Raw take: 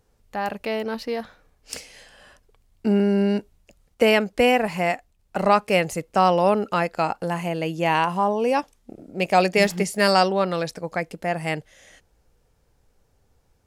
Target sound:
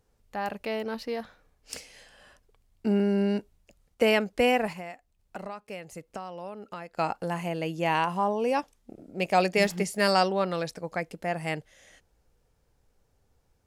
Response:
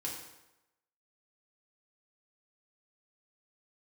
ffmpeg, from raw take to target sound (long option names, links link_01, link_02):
-filter_complex "[0:a]asplit=3[link_01][link_02][link_03];[link_01]afade=type=out:start_time=4.72:duration=0.02[link_04];[link_02]acompressor=threshold=-32dB:ratio=6,afade=type=in:start_time=4.72:duration=0.02,afade=type=out:start_time=6.97:duration=0.02[link_05];[link_03]afade=type=in:start_time=6.97:duration=0.02[link_06];[link_04][link_05][link_06]amix=inputs=3:normalize=0,volume=-5dB"